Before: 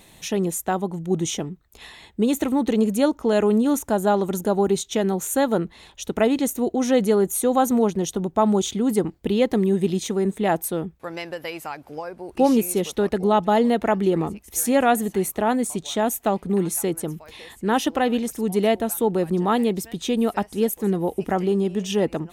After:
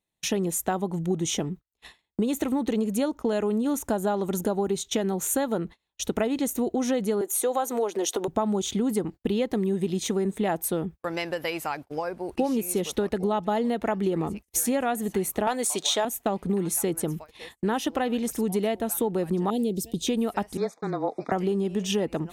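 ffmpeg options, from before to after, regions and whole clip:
ffmpeg -i in.wav -filter_complex "[0:a]asettb=1/sr,asplit=3[link_01][link_02][link_03];[link_01]atrim=end=7.214[link_04];[link_02]atrim=start=7.21:end=8.28,asetpts=PTS-STARTPTS,afade=type=in:duration=0.004:curve=qsin,afade=type=out:start_time=1.066:duration=0.004:curve=qsin,highpass=frequency=350:width=0.5412,highpass=frequency=350:width=1.3066,acompressor=mode=upward:threshold=-22dB:ratio=2.5:attack=3.2:release=140:knee=2.83:detection=peak[link_05];[link_03]atrim=start=8.276[link_06];[link_04][link_05]acrossfade=duration=0.004:curve1=hsin:curve2=qsin[link_07];[link_07][link_06]acrossfade=duration=0.004:curve1=qsin:curve2=hsin,asettb=1/sr,asplit=3[link_08][link_09][link_10];[link_08]atrim=end=15.474[link_11];[link_09]atrim=start=15.47:end=16.05,asetpts=PTS-STARTPTS,afade=type=in:duration=0.004:curve=qsin,afade=type=out:start_time=0.576:duration=0.004:curve=qsin,highpass=460,equalizer=frequency=4500:width_type=o:width=1.1:gain=5,acontrast=72[link_12];[link_10]atrim=start=16.046[link_13];[link_11][link_12]acrossfade=duration=0.004:curve1=hsin:curve2=qsin[link_14];[link_14][link_13]acrossfade=duration=0.004:curve1=qsin:curve2=hsin,asettb=1/sr,asplit=3[link_15][link_16][link_17];[link_15]atrim=end=19.504[link_18];[link_16]atrim=start=19.5:end=20.07,asetpts=PTS-STARTPTS,afade=type=in:duration=0.004:curve=qsin,afade=type=out:start_time=0.566:duration=0.004:curve=qsin,asuperstop=centerf=1300:order=4:qfactor=0.56,equalizer=frequency=2100:width=1.7:gain=-7[link_19];[link_17]atrim=start=20.066[link_20];[link_18][link_19]acrossfade=duration=0.004:curve1=hsin:curve2=qsin[link_21];[link_21][link_20]acrossfade=duration=0.004:curve1=qsin:curve2=hsin,asettb=1/sr,asplit=3[link_22][link_23][link_24];[link_22]atrim=end=20.574[link_25];[link_23]atrim=start=20.57:end=21.32,asetpts=PTS-STARTPTS,afade=type=in:duration=0.004:curve=qsin,afade=type=out:start_time=0.746:duration=0.004:curve=qsin,afreqshift=-23,asuperstop=centerf=2900:order=12:qfactor=2.7,highpass=360,equalizer=frequency=380:width_type=q:width=4:gain=-9,equalizer=frequency=650:width_type=q:width=4:gain=4,equalizer=frequency=1200:width_type=q:width=4:gain=7,equalizer=frequency=1800:width_type=q:width=4:gain=-4,equalizer=frequency=3200:width_type=q:width=4:gain=-4,lowpass=frequency=5200:width=0.5412,lowpass=frequency=5200:width=1.3066[link_26];[link_24]atrim=start=21.316[link_27];[link_25][link_26]acrossfade=duration=0.004:curve1=hsin:curve2=qsin[link_28];[link_28][link_27]acrossfade=duration=0.004:curve1=qsin:curve2=hsin,acompressor=threshold=-25dB:ratio=6,agate=range=-38dB:threshold=-40dB:ratio=16:detection=peak,volume=2.5dB" out.wav

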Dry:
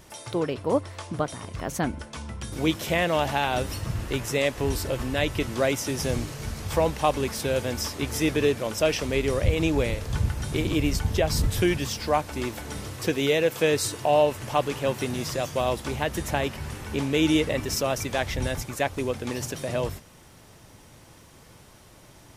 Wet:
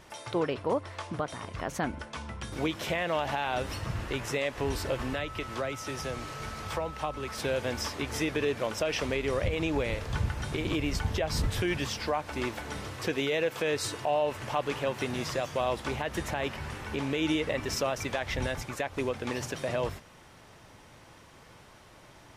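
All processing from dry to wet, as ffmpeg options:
ffmpeg -i in.wav -filter_complex "[0:a]asettb=1/sr,asplit=3[link_01][link_02][link_03];[link_01]atrim=end=5.134[link_04];[link_02]atrim=start=5.13:end=7.38,asetpts=PTS-STARTPTS,afade=type=in:duration=0.004:curve=qsin,afade=type=out:start_time=2.246:duration=0.004:curve=qsin,acrossover=split=130|380[link_05][link_06][link_07];[link_05]acompressor=threshold=-37dB:ratio=4[link_08];[link_06]acompressor=threshold=-41dB:ratio=4[link_09];[link_07]acompressor=threshold=-33dB:ratio=4[link_10];[link_08][link_09][link_10]amix=inputs=3:normalize=0,aeval=exprs='val(0)+0.00631*sin(2*PI*1300*n/s)':channel_layout=same[link_11];[link_03]atrim=start=7.376[link_12];[link_04][link_11]acrossfade=duration=0.004:curve1=hsin:curve2=qsin[link_13];[link_13][link_12]acrossfade=duration=0.004:curve1=qsin:curve2=hsin,lowpass=frequency=1900:poles=1,tiltshelf=frequency=630:gain=-5,alimiter=limit=-18.5dB:level=0:latency=1:release=117" out.wav

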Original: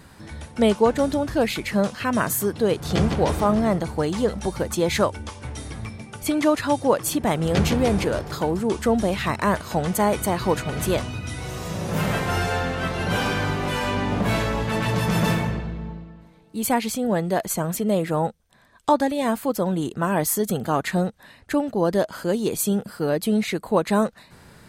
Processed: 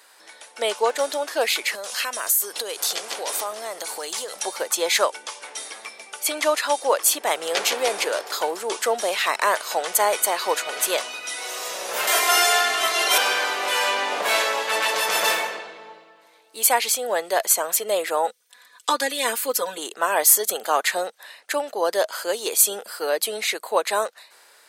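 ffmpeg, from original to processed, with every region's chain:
ffmpeg -i in.wav -filter_complex "[0:a]asettb=1/sr,asplit=3[link_01][link_02][link_03];[link_01]atrim=end=1.754[link_04];[link_02]atrim=start=1.75:end=4.43,asetpts=PTS-STARTPTS,afade=type=in:duration=0.004:curve=qsin,afade=type=out:start_time=2.676:duration=0.004:curve=qsin,highshelf=frequency=4600:gain=11.5,acompressor=threshold=-27dB:ratio=8:attack=3.2:release=140:knee=1:detection=peak[link_05];[link_03]atrim=start=4.426[link_06];[link_04][link_05]acrossfade=duration=0.004:curve1=hsin:curve2=qsin[link_07];[link_07][link_06]acrossfade=duration=0.004:curve1=qsin:curve2=hsin,asettb=1/sr,asplit=3[link_08][link_09][link_10];[link_08]atrim=end=12.074[link_11];[link_09]atrim=start=12.07:end=13.18,asetpts=PTS-STARTPTS,afade=type=in:duration=0.004:curve=qsin,afade=type=out:start_time=1.106:duration=0.004:curve=qsin,aemphasis=mode=production:type=cd,aecho=1:1:2.9:0.96,atrim=end_sample=48951[link_12];[link_10]atrim=start=13.176[link_13];[link_11][link_12]acrossfade=duration=0.004:curve1=hsin:curve2=qsin[link_14];[link_14][link_13]acrossfade=duration=0.004:curve1=qsin:curve2=hsin,asettb=1/sr,asplit=3[link_15][link_16][link_17];[link_15]atrim=end=18.274[link_18];[link_16]atrim=start=18.27:end=19.78,asetpts=PTS-STARTPTS,afade=type=in:duration=0.004:curve=qsin,afade=type=out:start_time=1.506:duration=0.004:curve=qsin,equalizer=frequency=700:width_type=o:width=0.84:gain=-11,aecho=1:1:4.1:0.9,atrim=end_sample=66591[link_19];[link_17]atrim=start=19.776[link_20];[link_18][link_19]acrossfade=duration=0.004:curve1=hsin:curve2=qsin[link_21];[link_21][link_20]acrossfade=duration=0.004:curve1=qsin:curve2=hsin,dynaudnorm=framelen=110:gausssize=13:maxgain=8dB,highpass=frequency=470:width=0.5412,highpass=frequency=470:width=1.3066,highshelf=frequency=2000:gain=8.5,volume=-5dB" out.wav

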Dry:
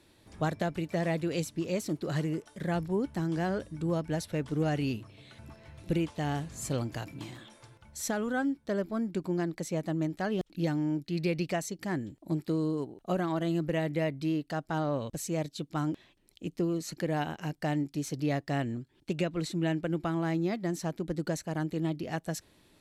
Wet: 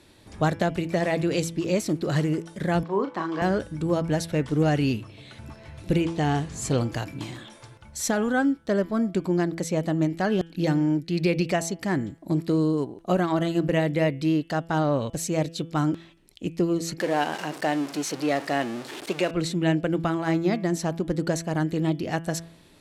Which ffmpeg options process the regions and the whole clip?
ffmpeg -i in.wav -filter_complex "[0:a]asettb=1/sr,asplit=3[link_01][link_02][link_03];[link_01]atrim=end=2.834[link_04];[link_02]atrim=start=2.83:end=3.42,asetpts=PTS-STARTPTS,afade=type=in:duration=0.004:curve=qsin,afade=type=out:start_time=0.586:duration=0.004:curve=qsin,highpass=360,lowpass=3700,equalizer=frequency=1100:width_type=o:width=0.26:gain=15,asplit=2[link_05][link_06];[link_06]adelay=36,volume=-6.5dB[link_07];[link_05][link_07]amix=inputs=2:normalize=0,atrim=end_sample=26019[link_08];[link_03]atrim=start=3.416[link_09];[link_04][link_08]acrossfade=duration=0.004:curve1=hsin:curve2=qsin[link_10];[link_10][link_09]acrossfade=duration=0.004:curve1=qsin:curve2=hsin,asettb=1/sr,asplit=3[link_11][link_12][link_13];[link_11]atrim=end=6.014[link_14];[link_12]atrim=start=6.01:end=6.8,asetpts=PTS-STARTPTS,afade=type=in:duration=0.004:curve=qsin,afade=type=out:start_time=0.786:duration=0.004:curve=qsin,lowpass=10000,equalizer=frequency=500:width=1.5:gain=4,bandreject=frequency=570:width=6.3[link_15];[link_13]atrim=start=6.796[link_16];[link_14][link_15]acrossfade=duration=0.004:curve1=hsin:curve2=qsin[link_17];[link_17][link_16]acrossfade=duration=0.004:curve1=qsin:curve2=hsin,asettb=1/sr,asplit=3[link_18][link_19][link_20];[link_18]atrim=end=17.004[link_21];[link_19]atrim=start=17:end=19.31,asetpts=PTS-STARTPTS,afade=type=in:duration=0.004:curve=qsin,afade=type=out:start_time=2.306:duration=0.004:curve=qsin,aeval=exprs='val(0)+0.5*0.0158*sgn(val(0))':channel_layout=same,highpass=340,highshelf=frequency=6700:gain=-5[link_22];[link_20]atrim=start=19.306[link_23];[link_21][link_22]acrossfade=duration=0.004:curve1=hsin:curve2=qsin[link_24];[link_24][link_23]acrossfade=duration=0.004:curve1=qsin:curve2=hsin,lowpass=12000,bandreject=frequency=166.2:width_type=h:width=4,bandreject=frequency=332.4:width_type=h:width=4,bandreject=frequency=498.6:width_type=h:width=4,bandreject=frequency=664.8:width_type=h:width=4,bandreject=frequency=831:width_type=h:width=4,bandreject=frequency=997.2:width_type=h:width=4,bandreject=frequency=1163.4:width_type=h:width=4,bandreject=frequency=1329.6:width_type=h:width=4,bandreject=frequency=1495.8:width_type=h:width=4,bandreject=frequency=1662:width_type=h:width=4,bandreject=frequency=1828.2:width_type=h:width=4,bandreject=frequency=1994.4:width_type=h:width=4,bandreject=frequency=2160.6:width_type=h:width=4,bandreject=frequency=2326.8:width_type=h:width=4,bandreject=frequency=2493:width_type=h:width=4,bandreject=frequency=2659.2:width_type=h:width=4,bandreject=frequency=2825.4:width_type=h:width=4,bandreject=frequency=2991.6:width_type=h:width=4,bandreject=frequency=3157.8:width_type=h:width=4,bandreject=frequency=3324:width_type=h:width=4,bandreject=frequency=3490.2:width_type=h:width=4,volume=7.5dB" out.wav

